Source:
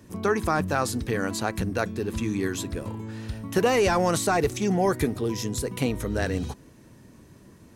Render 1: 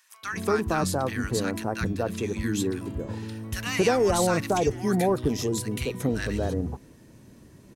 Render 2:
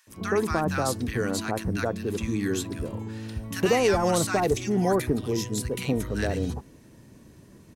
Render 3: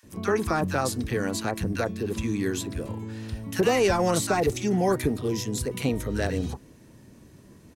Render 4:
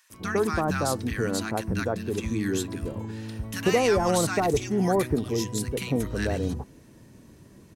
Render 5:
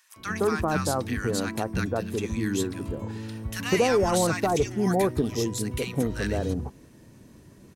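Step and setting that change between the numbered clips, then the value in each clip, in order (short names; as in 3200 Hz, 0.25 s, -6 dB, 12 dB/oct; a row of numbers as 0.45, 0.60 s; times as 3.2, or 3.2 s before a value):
bands offset in time, time: 230, 70, 30, 100, 160 ms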